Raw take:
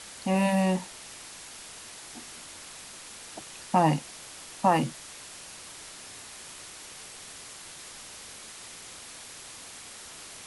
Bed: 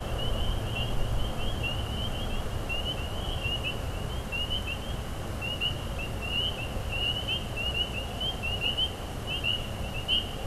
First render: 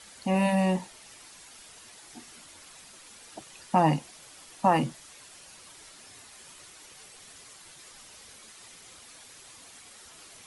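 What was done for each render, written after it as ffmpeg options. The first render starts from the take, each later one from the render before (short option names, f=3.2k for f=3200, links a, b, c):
-af "afftdn=nr=8:nf=-45"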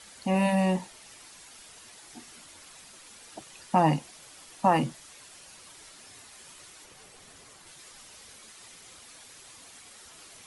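-filter_complex "[0:a]asettb=1/sr,asplit=3[a][b][c];[a]atrim=end=6.844[d];[b]atrim=start=6.84:end=7.67,asetpts=PTS-STARTPTS,afade=t=in:d=0.004:c=qsin,afade=t=out:st=0.826:d=0.004:c=qsin,tiltshelf=f=1.4k:g=3.5[e];[c]atrim=start=7.666[f];[d][e]acrossfade=d=0.004:c1=hsin:c2=qsin[g];[g][f]acrossfade=d=0.004:c1=qsin:c2=hsin"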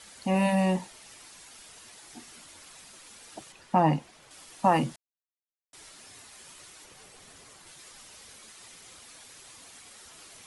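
-filter_complex "[0:a]asettb=1/sr,asplit=3[a][b][c];[a]atrim=end=3.524[d];[b]atrim=start=3.52:end=4.31,asetpts=PTS-STARTPTS,afade=t=in:d=0.004:c=qsin,afade=t=out:st=0.786:d=0.004:c=qsin,highshelf=f=4.4k:g=-12[e];[c]atrim=start=4.306[f];[d][e]acrossfade=d=0.004:c1=hsin:c2=qsin[g];[g][f]acrossfade=d=0.004:c1=qsin:c2=hsin,asplit=3[h][i][j];[h]atrim=end=4.96,asetpts=PTS-STARTPTS,afade=t=out:st=4.956:d=0.004:c=hsin[k];[i]atrim=start=4.96:end=5.73,asetpts=PTS-STARTPTS,volume=0[l];[j]atrim=start=5.73,asetpts=PTS-STARTPTS,afade=t=in:d=0.004:c=hsin[m];[k][l][m]concat=n=3:v=0:a=1"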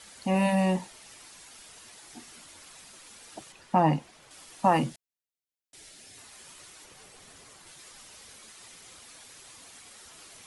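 -filter_complex "[0:a]asettb=1/sr,asplit=3[a][b][c];[a]atrim=end=4.894[d];[b]atrim=start=4.89:end=6.18,asetpts=PTS-STARTPTS,afade=t=in:d=0.004:c=qsin,afade=t=out:st=1.286:d=0.004:c=qsin,equalizer=f=1.1k:t=o:w=0.77:g=-10[e];[c]atrim=start=6.176[f];[d][e]acrossfade=d=0.004:c1=hsin:c2=qsin[g];[g][f]acrossfade=d=0.004:c1=qsin:c2=hsin"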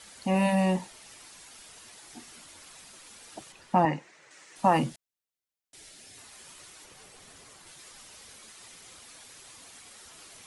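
-filter_complex "[0:a]asettb=1/sr,asplit=3[a][b][c];[a]atrim=end=3.854[d];[b]atrim=start=3.85:end=4.56,asetpts=PTS-STARTPTS,afade=t=in:d=0.004:c=qsin,afade=t=out:st=0.706:d=0.004:c=qsin,highpass=210,equalizer=f=240:t=q:w=4:g=-10,equalizer=f=720:t=q:w=4:g=-6,equalizer=f=1.1k:t=q:w=4:g=-3,equalizer=f=1.9k:t=q:w=4:g=7,equalizer=f=3.3k:t=q:w=4:g=-7,equalizer=f=4.8k:t=q:w=4:g=-5,lowpass=f=7.7k:w=0.5412,lowpass=f=7.7k:w=1.3066[e];[c]atrim=start=4.556[f];[d][e]acrossfade=d=0.004:c1=hsin:c2=qsin[g];[g][f]acrossfade=d=0.004:c1=qsin:c2=hsin"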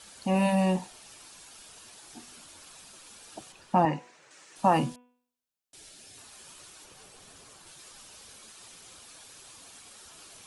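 -af "equalizer=f=2k:t=o:w=0.22:g=-7,bandreject=f=246.5:t=h:w=4,bandreject=f=493:t=h:w=4,bandreject=f=739.5:t=h:w=4,bandreject=f=986:t=h:w=4,bandreject=f=1.2325k:t=h:w=4,bandreject=f=1.479k:t=h:w=4,bandreject=f=1.7255k:t=h:w=4,bandreject=f=1.972k:t=h:w=4,bandreject=f=2.2185k:t=h:w=4,bandreject=f=2.465k:t=h:w=4,bandreject=f=2.7115k:t=h:w=4,bandreject=f=2.958k:t=h:w=4,bandreject=f=3.2045k:t=h:w=4,bandreject=f=3.451k:t=h:w=4"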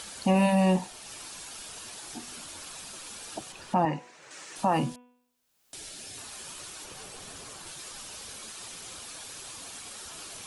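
-filter_complex "[0:a]asplit=2[a][b];[b]acompressor=mode=upward:threshold=-38dB:ratio=2.5,volume=-2dB[c];[a][c]amix=inputs=2:normalize=0,alimiter=limit=-14.5dB:level=0:latency=1:release=396"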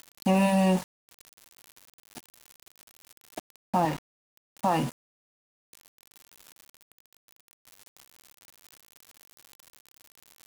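-af "aeval=exprs='val(0)*gte(abs(val(0)),0.0211)':c=same"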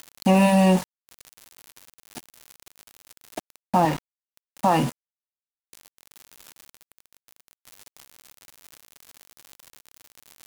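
-af "volume=5.5dB"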